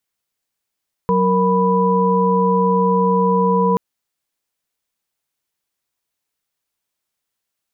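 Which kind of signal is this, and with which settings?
chord F#3/A#4/B5 sine, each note -17 dBFS 2.68 s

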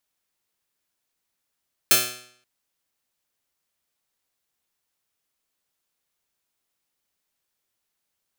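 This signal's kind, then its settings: plucked string B2, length 0.53 s, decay 0.63 s, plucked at 0.13, bright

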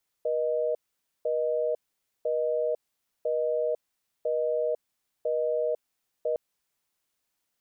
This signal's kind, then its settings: call progress tone busy tone, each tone -27 dBFS 6.11 s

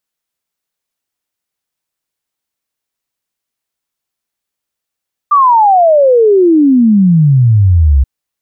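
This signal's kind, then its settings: log sweep 1200 Hz -> 64 Hz 2.73 s -4 dBFS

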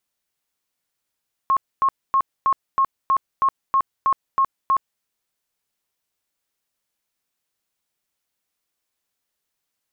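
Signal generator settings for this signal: tone bursts 1080 Hz, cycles 73, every 0.32 s, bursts 11, -14 dBFS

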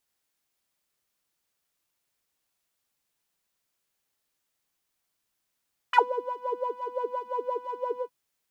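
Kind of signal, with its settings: synth patch with filter wobble B5, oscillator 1 triangle, interval -12 st, oscillator 2 level -6 dB, noise -24 dB, filter bandpass, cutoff 140 Hz, Q 7.5, filter envelope 4 oct, filter decay 0.06 s, attack 6.7 ms, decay 0.17 s, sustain -12.5 dB, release 0.10 s, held 2.07 s, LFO 5.8 Hz, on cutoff 0.9 oct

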